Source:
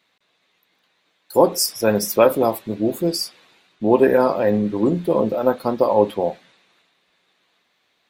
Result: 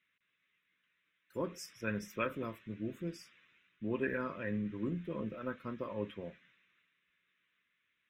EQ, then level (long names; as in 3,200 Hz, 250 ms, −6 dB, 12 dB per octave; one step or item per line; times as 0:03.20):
high-frequency loss of the air 200 metres
guitar amp tone stack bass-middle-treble 5-5-5
phaser with its sweep stopped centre 1,900 Hz, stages 4
+2.5 dB